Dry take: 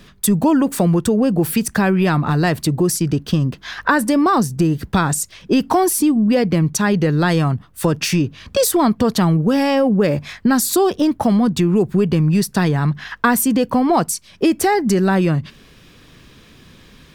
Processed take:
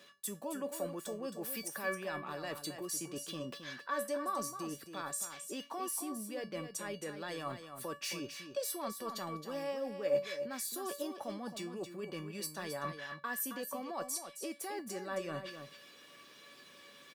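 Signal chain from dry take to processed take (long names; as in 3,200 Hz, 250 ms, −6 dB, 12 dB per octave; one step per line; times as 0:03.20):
high-pass filter 360 Hz 12 dB per octave
parametric band 15,000 Hz +2 dB
reversed playback
downward compressor 6 to 1, threshold −29 dBFS, peak gain reduction 17.5 dB
reversed playback
tuned comb filter 570 Hz, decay 0.24 s, harmonics all, mix 90%
single-tap delay 268 ms −9 dB
level +6.5 dB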